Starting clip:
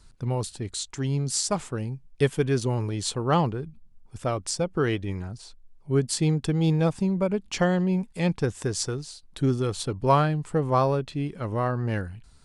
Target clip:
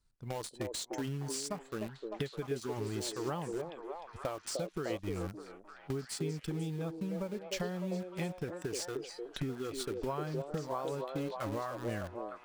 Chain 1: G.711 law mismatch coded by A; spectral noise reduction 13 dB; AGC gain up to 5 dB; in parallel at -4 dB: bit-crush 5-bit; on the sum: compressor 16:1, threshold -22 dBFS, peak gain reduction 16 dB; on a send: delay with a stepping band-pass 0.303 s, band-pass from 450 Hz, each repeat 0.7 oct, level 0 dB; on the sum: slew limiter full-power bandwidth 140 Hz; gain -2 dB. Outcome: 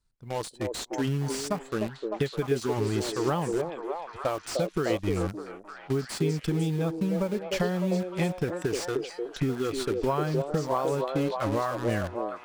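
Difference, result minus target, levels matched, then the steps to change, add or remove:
compressor: peak gain reduction -10 dB
change: compressor 16:1, threshold -32.5 dBFS, peak gain reduction 26 dB

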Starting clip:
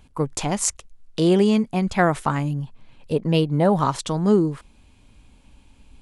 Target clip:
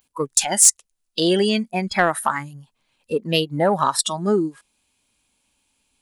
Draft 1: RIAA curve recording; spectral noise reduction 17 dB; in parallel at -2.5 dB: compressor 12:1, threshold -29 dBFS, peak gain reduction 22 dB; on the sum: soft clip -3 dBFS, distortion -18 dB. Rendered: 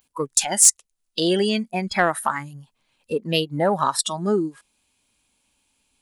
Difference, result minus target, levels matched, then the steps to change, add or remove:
compressor: peak gain reduction +8.5 dB
change: compressor 12:1, threshold -20 dBFS, peak gain reduction 14 dB

